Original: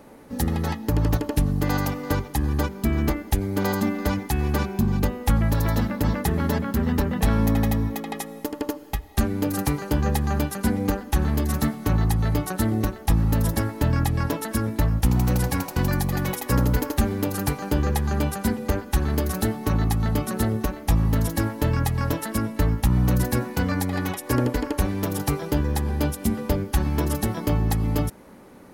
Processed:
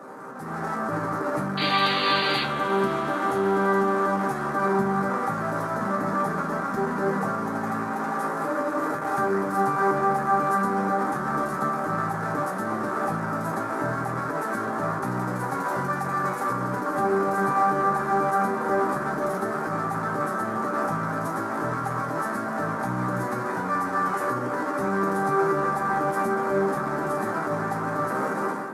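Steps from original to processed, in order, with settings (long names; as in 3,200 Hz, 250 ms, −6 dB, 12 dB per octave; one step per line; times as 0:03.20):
linear delta modulator 64 kbit/s, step −23 dBFS
Bessel high-pass filter 210 Hz, order 4
high shelf with overshoot 2,000 Hz −13.5 dB, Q 3
brickwall limiter −21 dBFS, peak gain reduction 11.5 dB
automatic gain control gain up to 16 dB
sound drawn into the spectrogram noise, 0:01.57–0:02.44, 1,700–4,800 Hz −15 dBFS
resonators tuned to a chord C3 minor, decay 0.23 s
on a send: convolution reverb RT60 5.7 s, pre-delay 59 ms, DRR 10 dB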